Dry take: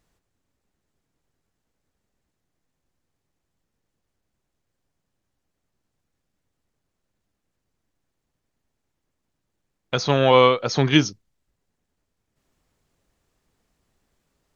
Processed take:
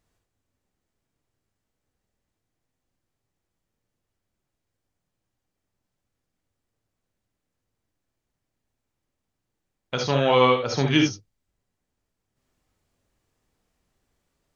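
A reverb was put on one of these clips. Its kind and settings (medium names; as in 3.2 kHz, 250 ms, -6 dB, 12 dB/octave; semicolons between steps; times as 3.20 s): gated-style reverb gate 90 ms rising, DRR 2.5 dB; trim -4.5 dB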